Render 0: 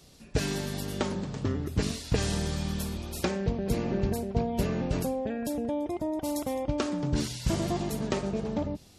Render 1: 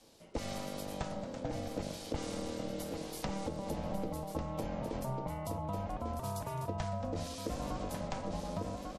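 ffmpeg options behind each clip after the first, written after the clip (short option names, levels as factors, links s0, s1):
-filter_complex "[0:a]aeval=exprs='val(0)*sin(2*PI*390*n/s)':c=same,aecho=1:1:1146:0.447,acrossover=split=180[s0][s1];[s1]acompressor=threshold=0.0224:ratio=6[s2];[s0][s2]amix=inputs=2:normalize=0,volume=0.668"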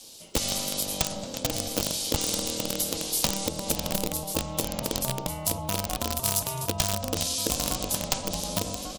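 -filter_complex "[0:a]asplit=2[s0][s1];[s1]acrusher=bits=4:mix=0:aa=0.000001,volume=0.596[s2];[s0][s2]amix=inputs=2:normalize=0,aexciter=amount=3:drive=8.3:freq=2700,volume=1.68"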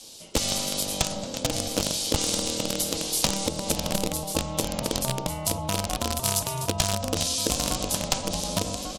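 -af "lowpass=11000,volume=1.33"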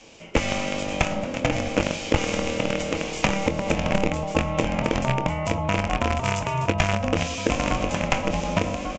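-filter_complex "[0:a]highshelf=f=3100:t=q:w=3:g=-10,asplit=2[s0][s1];[s1]adelay=24,volume=0.251[s2];[s0][s2]amix=inputs=2:normalize=0,aresample=16000,aresample=44100,volume=1.78"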